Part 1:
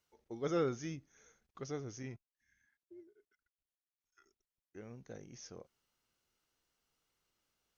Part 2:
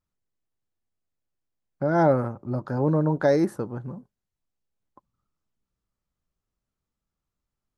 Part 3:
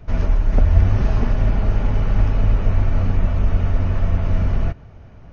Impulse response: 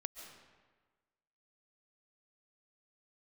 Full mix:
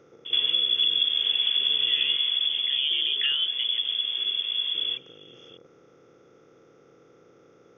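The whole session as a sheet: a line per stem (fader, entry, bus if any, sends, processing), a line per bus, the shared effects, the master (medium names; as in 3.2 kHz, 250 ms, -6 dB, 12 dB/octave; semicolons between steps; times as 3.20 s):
-16.5 dB, 0.00 s, no bus, no send, spectral levelling over time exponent 0.2; treble shelf 3.7 kHz -8.5 dB; peak limiter -25 dBFS, peak gain reduction 6 dB
-1.5 dB, 0.00 s, bus A, no send, none
2.11 s 0 dB -> 2.70 s -13 dB, 0.25 s, bus A, no send, peaking EQ 590 Hz +8 dB 0.85 oct
bus A: 0.0 dB, frequency inversion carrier 3.4 kHz; compression 5:1, threshold -22 dBFS, peak gain reduction 15.5 dB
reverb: none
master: none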